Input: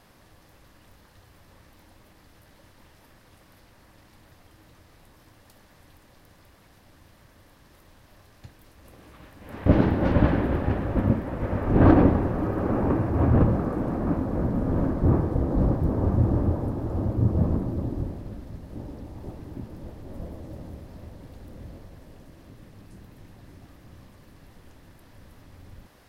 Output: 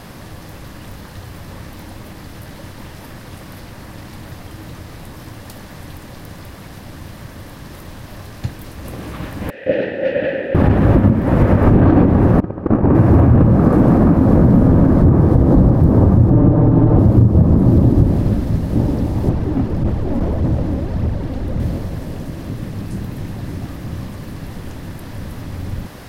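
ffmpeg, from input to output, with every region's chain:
ffmpeg -i in.wav -filter_complex "[0:a]asettb=1/sr,asplit=3[link_01][link_02][link_03];[link_01]atrim=end=9.504[link_04];[link_02]atrim=start=9.5:end=10.55,asetpts=PTS-STARTPTS,afade=type=in:duration=0.004:curve=qsin,afade=type=out:start_time=1.046:duration=0.004:curve=qsin,asplit=3[link_05][link_06][link_07];[link_05]bandpass=frequency=530:width_type=q:width=8,volume=0dB[link_08];[link_06]bandpass=frequency=1840:width_type=q:width=8,volume=-6dB[link_09];[link_07]bandpass=frequency=2480:width_type=q:width=8,volume=-9dB[link_10];[link_08][link_09][link_10]amix=inputs=3:normalize=0,tiltshelf=frequency=1400:gain=-6.5[link_11];[link_03]atrim=start=10.546[link_12];[link_04][link_11]acrossfade=duration=0.004:curve1=hsin:curve2=qsin[link_13];[link_13][link_12]acrossfade=duration=0.004:curve1=qsin:curve2=hsin,asettb=1/sr,asplit=3[link_14][link_15][link_16];[link_14]atrim=end=12.404[link_17];[link_15]atrim=start=12.4:end=12.95,asetpts=PTS-STARTPTS,afade=type=in:duration=0.004:curve=qsin,afade=type=out:start_time=0.546:duration=0.004:curve=qsin,aemphasis=mode=reproduction:type=75kf,agate=range=-23dB:threshold=-23dB:ratio=16:release=100:detection=peak[link_18];[link_16]atrim=start=12.946[link_19];[link_17][link_18]acrossfade=duration=0.004:curve1=hsin:curve2=qsin[link_20];[link_20][link_19]acrossfade=duration=0.004:curve1=qsin:curve2=hsin,asettb=1/sr,asplit=3[link_21][link_22][link_23];[link_21]atrim=end=16.304[link_24];[link_22]atrim=start=16.3:end=16.99,asetpts=PTS-STARTPTS,afade=type=in:duration=0.004:curve=qsin,afade=type=out:start_time=0.686:duration=0.004:curve=qsin,aecho=1:1:6.7:0.67,atrim=end_sample=30429,adynamicsmooth=sensitivity=1.5:basefreq=2700[link_25];[link_23]atrim=start=16.986[link_26];[link_24][link_25]acrossfade=duration=0.004:curve1=hsin:curve2=qsin[link_27];[link_27][link_26]acrossfade=duration=0.004:curve1=qsin:curve2=hsin,asettb=1/sr,asplit=3[link_28][link_29][link_30];[link_28]atrim=end=19.294[link_31];[link_29]atrim=start=19.29:end=21.6,asetpts=PTS-STARTPTS,afade=type=in:duration=0.004:curve=qsin,afade=type=out:start_time=2.306:duration=0.004:curve=qsin,lowpass=frequency=3300:poles=1,aphaser=in_gain=1:out_gain=1:delay=4.1:decay=0.43:speed=1.7:type=triangular,asoftclip=type=hard:threshold=-34dB[link_32];[link_30]atrim=start=21.596[link_33];[link_31][link_32]acrossfade=duration=0.004:curve1=hsin:curve2=qsin[link_34];[link_34][link_33]acrossfade=duration=0.004:curve1=qsin:curve2=hsin,equalizer=frequency=150:width_type=o:width=2:gain=6,acompressor=threshold=-24dB:ratio=6,alimiter=level_in=19dB:limit=-1dB:release=50:level=0:latency=1,volume=-1dB" out.wav

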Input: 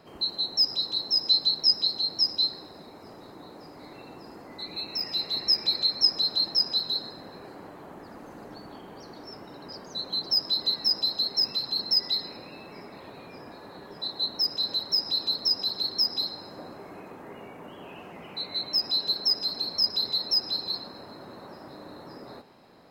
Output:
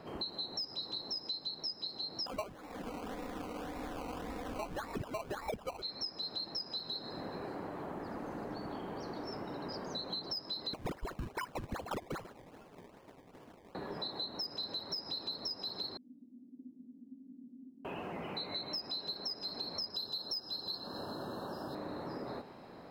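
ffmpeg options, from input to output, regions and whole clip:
ffmpeg -i in.wav -filter_complex "[0:a]asettb=1/sr,asplit=3[link_01][link_02][link_03];[link_01]atrim=end=2.264[link_04];[link_02]atrim=start=2.26:end=5.82,asetpts=PTS-STARTPTS,afade=type=in:duration=0.004:curve=qsin,afade=type=out:start_time=3.556:duration=0.004:curve=qsin,asubboost=boost=8.5:cutoff=78,aecho=1:1:4:0.88,atrim=end_sample=156996,acrusher=samples=20:mix=1:aa=0.000001:lfo=1:lforange=12:lforate=1.8[link_05];[link_03]atrim=start=5.816[link_06];[link_04][link_05]acrossfade=duration=0.004:curve1=hsin:curve2=qsin[link_07];[link_07][link_06]acrossfade=duration=0.004:curve1=qsin:curve2=hsin,asettb=1/sr,asplit=3[link_08][link_09][link_10];[link_08]atrim=end=10.734[link_11];[link_09]atrim=start=10.73:end=13.75,asetpts=PTS-STARTPTS,afade=type=in:duration=0.004:curve=qsin,afade=type=out:start_time=3.016:duration=0.004:curve=qsin,agate=range=-33dB:threshold=-35dB:ratio=3:release=100:detection=peak,acrusher=samples=22:mix=1:aa=0.000001:lfo=1:lforange=22:lforate=2.5[link_12];[link_10]atrim=start=13.746[link_13];[link_11][link_12]acrossfade=duration=0.004:curve1=hsin:curve2=qsin[link_14];[link_14][link_13]acrossfade=duration=0.004:curve1=qsin:curve2=hsin,asettb=1/sr,asplit=3[link_15][link_16][link_17];[link_15]atrim=end=15.974[link_18];[link_16]atrim=start=15.97:end=17.85,asetpts=PTS-STARTPTS,afade=type=in:duration=0.004:curve=qsin,afade=type=out:start_time=1.876:duration=0.004:curve=qsin,afreqshift=-220,asuperpass=centerf=250:order=4:qfactor=6.3[link_19];[link_17]atrim=start=17.846[link_20];[link_18][link_19]acrossfade=duration=0.004:curve1=hsin:curve2=qsin[link_21];[link_21][link_20]acrossfade=duration=0.004:curve1=qsin:curve2=hsin,asettb=1/sr,asplit=3[link_22][link_23][link_24];[link_22]atrim=end=19.944[link_25];[link_23]atrim=start=19.94:end=21.75,asetpts=PTS-STARTPTS,afade=type=in:duration=0.004:curve=qsin,afade=type=out:start_time=1.806:duration=0.004:curve=qsin,asuperstop=centerf=2200:order=20:qfactor=2.5,highshelf=frequency=5300:gain=11.5[link_26];[link_24]atrim=start=21.746[link_27];[link_25][link_26]acrossfade=duration=0.004:curve1=hsin:curve2=qsin[link_28];[link_28][link_27]acrossfade=duration=0.004:curve1=qsin:curve2=hsin,highshelf=frequency=2900:gain=-8.5,acompressor=threshold=-41dB:ratio=10,volume=4dB" out.wav

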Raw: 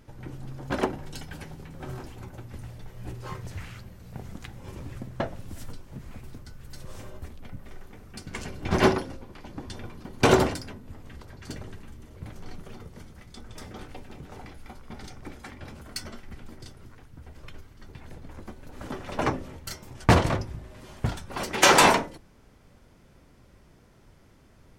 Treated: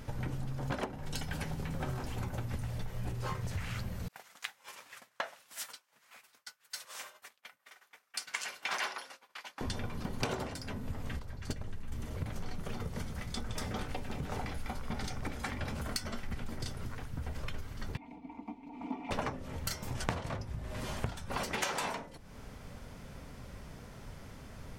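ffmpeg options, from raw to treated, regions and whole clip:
ffmpeg -i in.wav -filter_complex "[0:a]asettb=1/sr,asplit=3[link_01][link_02][link_03];[link_01]atrim=end=4.084[link_04];[link_02]atrim=start=4.08:end=9.61,asetpts=PTS-STARTPTS,afade=type=in:duration=0.004:curve=qsin,afade=type=out:start_time=5.526:duration=0.004:curve=qsin,highpass=1200,agate=range=-33dB:threshold=-50dB:ratio=3:release=100:detection=peak[link_05];[link_03]atrim=start=9.606[link_06];[link_04][link_05]acrossfade=duration=0.004:curve1=hsin:curve2=qsin[link_07];[link_07][link_06]acrossfade=duration=0.004:curve1=qsin:curve2=hsin,asettb=1/sr,asplit=3[link_08][link_09][link_10];[link_08]atrim=end=11.194[link_11];[link_09]atrim=start=11.19:end=11.92,asetpts=PTS-STARTPTS,afade=type=in:duration=0.004:curve=qsin,afade=type=out:start_time=0.726:duration=0.004:curve=qsin,agate=range=-11dB:threshold=-36dB:ratio=16:release=100:detection=peak,lowshelf=frequency=77:gain=10.5[link_12];[link_10]atrim=start=11.916[link_13];[link_11][link_12]acrossfade=duration=0.004:curve1=hsin:curve2=qsin[link_14];[link_14][link_13]acrossfade=duration=0.004:curve1=qsin:curve2=hsin,asettb=1/sr,asplit=3[link_15][link_16][link_17];[link_15]atrim=end=17.974[link_18];[link_16]atrim=start=17.97:end=19.11,asetpts=PTS-STARTPTS,afade=type=in:duration=0.004:curve=qsin,afade=type=out:start_time=1.136:duration=0.004:curve=qsin,asplit=3[link_19][link_20][link_21];[link_19]bandpass=frequency=300:width_type=q:width=8,volume=0dB[link_22];[link_20]bandpass=frequency=870:width_type=q:width=8,volume=-6dB[link_23];[link_21]bandpass=frequency=2240:width_type=q:width=8,volume=-9dB[link_24];[link_22][link_23][link_24]amix=inputs=3:normalize=0,equalizer=frequency=650:width_type=o:width=0.33:gain=14,aecho=1:1:4.3:0.73,atrim=end_sample=50274[link_25];[link_17]atrim=start=19.106[link_26];[link_18][link_25]acrossfade=duration=0.004:curve1=hsin:curve2=qsin[link_27];[link_27][link_26]acrossfade=duration=0.004:curve1=qsin:curve2=hsin,equalizer=frequency=340:width=4.8:gain=-9,acompressor=threshold=-41dB:ratio=16,volume=8.5dB" out.wav

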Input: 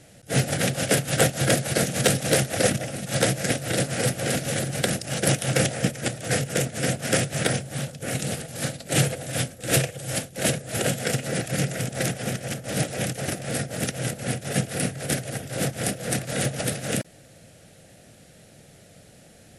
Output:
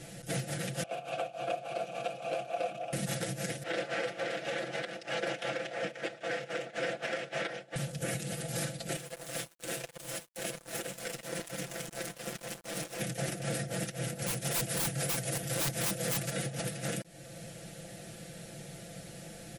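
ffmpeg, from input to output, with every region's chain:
ffmpeg -i in.wav -filter_complex "[0:a]asettb=1/sr,asplit=3[link_01][link_02][link_03];[link_01]atrim=end=0.834[link_04];[link_02]atrim=start=0.83:end=2.93,asetpts=PTS-STARTPTS,afade=type=in:duration=0.004:curve=qsin,afade=type=out:start_time=2.096:duration=0.004:curve=qsin,asplit=3[link_05][link_06][link_07];[link_05]bandpass=frequency=730:width_type=q:width=8,volume=0dB[link_08];[link_06]bandpass=frequency=1090:width_type=q:width=8,volume=-6dB[link_09];[link_07]bandpass=frequency=2440:width_type=q:width=8,volume=-9dB[link_10];[link_08][link_09][link_10]amix=inputs=3:normalize=0,bandreject=frequency=5300:width=23,acompressor=mode=upward:threshold=-35dB:ratio=2.5:attack=3.2:release=140:knee=2.83:detection=peak[link_11];[link_03]atrim=start=2.926[link_12];[link_04][link_11]acrossfade=duration=0.004:curve1=hsin:curve2=qsin[link_13];[link_13][link_12]acrossfade=duration=0.004:curve1=qsin:curve2=hsin,asettb=1/sr,asplit=3[link_14][link_15][link_16];[link_14]atrim=end=3.634[link_17];[link_15]atrim=start=3.63:end=7.76,asetpts=PTS-STARTPTS,afade=type=in:duration=0.004:curve=qsin,afade=type=out:start_time=4.126:duration=0.004:curve=qsin,highpass=440,lowpass=3000,agate=range=-33dB:threshold=-40dB:ratio=3:release=100:detection=peak[link_18];[link_16]atrim=start=7.756[link_19];[link_17][link_18]acrossfade=duration=0.004:curve1=hsin:curve2=qsin[link_20];[link_20][link_19]acrossfade=duration=0.004:curve1=qsin:curve2=hsin,asettb=1/sr,asplit=3[link_21][link_22][link_23];[link_21]atrim=end=8.964[link_24];[link_22]atrim=start=8.96:end=13.01,asetpts=PTS-STARTPTS,afade=type=in:duration=0.004:curve=qsin,afade=type=out:start_time=4.046:duration=0.004:curve=qsin,highpass=220,acompressor=threshold=-36dB:ratio=2:attack=3.2:release=140:knee=1:detection=peak,aeval=exprs='sgn(val(0))*max(abs(val(0))-0.0112,0)':channel_layout=same[link_25];[link_23]atrim=start=13.006[link_26];[link_24][link_25]acrossfade=duration=0.004:curve1=hsin:curve2=qsin[link_27];[link_27][link_26]acrossfade=duration=0.004:curve1=qsin:curve2=hsin,asettb=1/sr,asplit=3[link_28][link_29][link_30];[link_28]atrim=end=14.224[link_31];[link_29]atrim=start=14.22:end=16.3,asetpts=PTS-STARTPTS,afade=type=in:duration=0.004:curve=qsin,afade=type=out:start_time=2.076:duration=0.004:curve=qsin,highshelf=frequency=4800:gain=6.5,acontrast=30,aeval=exprs='(mod(4.73*val(0)+1,2)-1)/4.73':channel_layout=same[link_32];[link_30]atrim=start=16.296[link_33];[link_31][link_32]acrossfade=duration=0.004:curve1=hsin:curve2=qsin[link_34];[link_34][link_33]acrossfade=duration=0.004:curve1=qsin:curve2=hsin,acompressor=threshold=-31dB:ratio=4,alimiter=level_in=4dB:limit=-24dB:level=0:latency=1:release=482,volume=-4dB,aecho=1:1:5.9:0.78,volume=2dB" out.wav

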